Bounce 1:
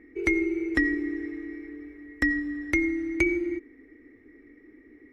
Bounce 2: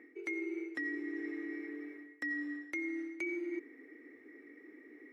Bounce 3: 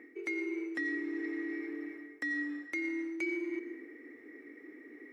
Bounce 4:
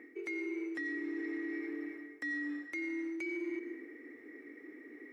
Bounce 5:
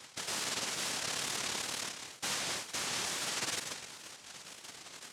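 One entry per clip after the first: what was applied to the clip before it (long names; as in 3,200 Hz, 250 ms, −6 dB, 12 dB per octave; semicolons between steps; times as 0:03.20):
reversed playback; downward compressor 12 to 1, threshold −34 dBFS, peak gain reduction 16.5 dB; reversed playback; high-pass filter 350 Hz 12 dB per octave; level +1 dB
in parallel at −6 dB: soft clipping −37 dBFS, distortion −13 dB; on the sum: convolution reverb RT60 1.0 s, pre-delay 109 ms, DRR 10.5 dB
brickwall limiter −31.5 dBFS, peak gain reduction 6 dB
cochlear-implant simulation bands 1; tape wow and flutter 81 cents; level +1.5 dB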